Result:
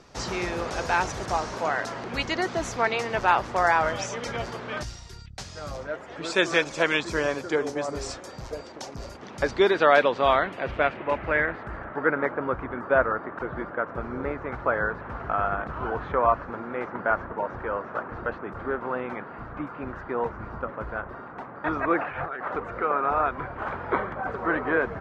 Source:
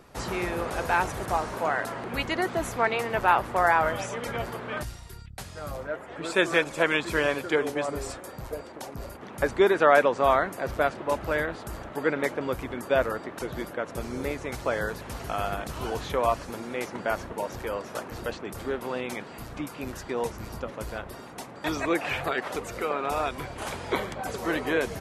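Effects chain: 7.03–7.95 bell 3000 Hz -7.5 dB 1.3 oct; 21.97–22.41 negative-ratio compressor -35 dBFS, ratio -1; low-pass sweep 5800 Hz -> 1400 Hz, 9.24–12.16

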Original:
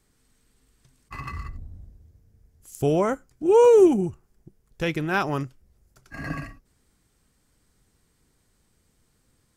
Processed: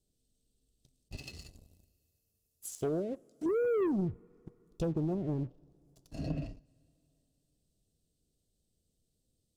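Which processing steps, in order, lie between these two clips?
1.17–3.46 RIAA curve recording; treble ducked by the level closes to 310 Hz, closed at -20.5 dBFS; elliptic band-stop 650–3600 Hz, stop band 40 dB; band shelf 1900 Hz +16 dB 1.3 oct; sample leveller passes 2; compressor 2.5:1, threshold -22 dBFS, peak gain reduction 4.5 dB; two-slope reverb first 0.34 s, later 3.5 s, from -18 dB, DRR 19 dB; gain -8 dB

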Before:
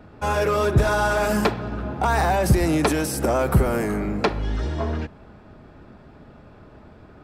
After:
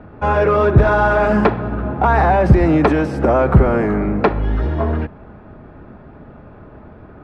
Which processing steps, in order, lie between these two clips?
LPF 1900 Hz 12 dB/oct; gain +7 dB

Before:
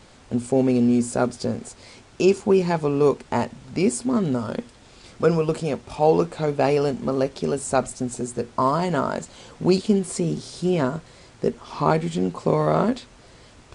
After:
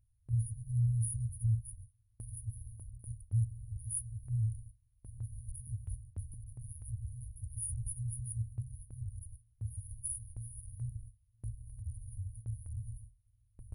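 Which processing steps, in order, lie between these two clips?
FFT band-reject 120–9500 Hz; gate with hold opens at -44 dBFS; 5.67–6.34 three-band squash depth 70%; gain +5 dB

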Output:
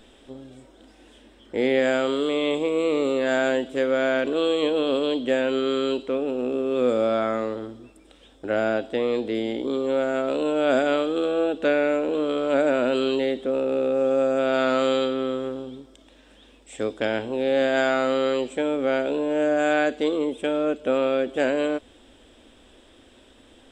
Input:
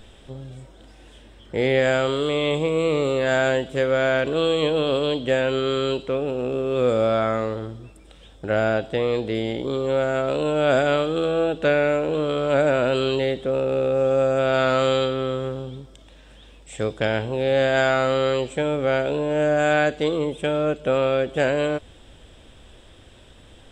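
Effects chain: resonant low shelf 200 Hz -7 dB, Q 3; gain -3 dB

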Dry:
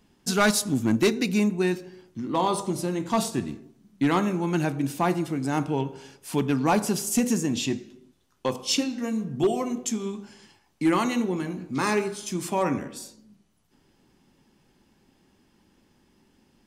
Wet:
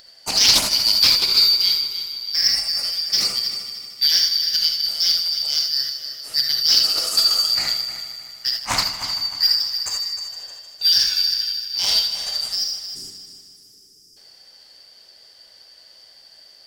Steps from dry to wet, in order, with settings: four-band scrambler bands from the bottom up 4321; spectral delete 12.56–14.17, 460–4800 Hz; upward compressor, threshold -36 dBFS; added harmonics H 4 -41 dB, 7 -22 dB, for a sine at -8 dBFS; multi-head echo 0.154 s, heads first and second, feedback 51%, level -13 dB; non-linear reverb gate 0.1 s rising, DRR 1.5 dB; Doppler distortion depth 0.4 ms; gain +5 dB

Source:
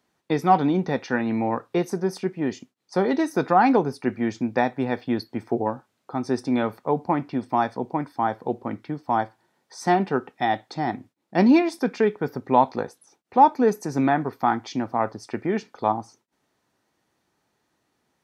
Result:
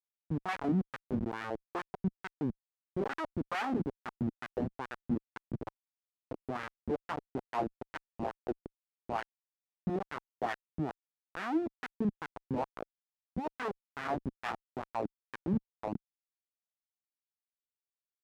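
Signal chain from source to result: 5.46–6.47 minimum comb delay 6.4 ms; Schmitt trigger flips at -19.5 dBFS; wah 2.3 Hz 200–1700 Hz, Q 2

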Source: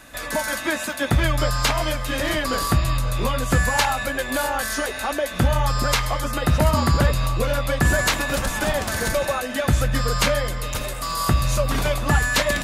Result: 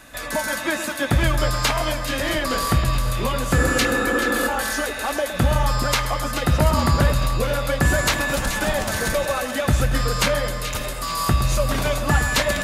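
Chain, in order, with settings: spectral repair 3.6–4.45, 210–1800 Hz before; split-band echo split 1700 Hz, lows 0.114 s, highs 0.43 s, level -10 dB

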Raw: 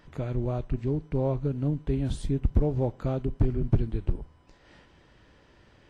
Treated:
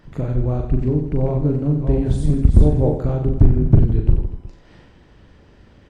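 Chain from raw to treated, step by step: 0.8–2.91 reverse delay 0.394 s, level -6 dB; dynamic EQ 3200 Hz, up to -5 dB, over -58 dBFS, Q 1.5; harmonic-percussive split harmonic -6 dB; low shelf 410 Hz +8 dB; reverse bouncing-ball echo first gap 40 ms, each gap 1.3×, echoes 5; gain +4 dB

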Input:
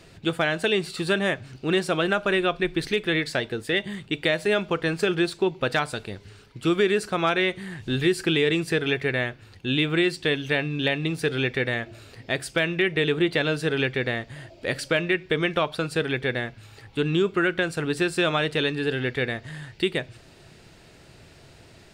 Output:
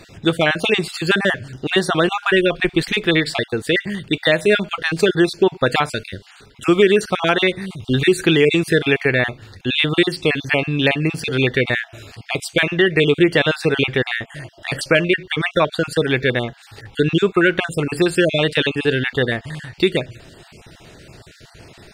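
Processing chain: random spectral dropouts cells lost 30%; gain +8.5 dB

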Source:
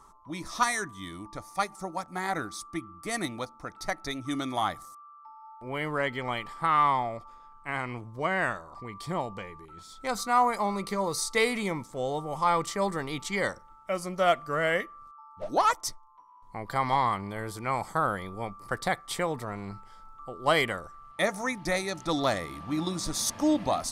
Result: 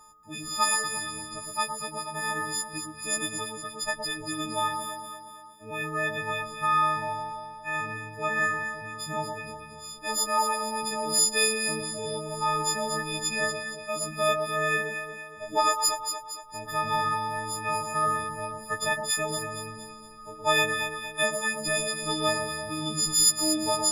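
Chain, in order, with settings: frequency quantiser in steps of 6 st; echo with dull and thin repeats by turns 0.116 s, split 1100 Hz, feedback 68%, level -4 dB; gain -4.5 dB

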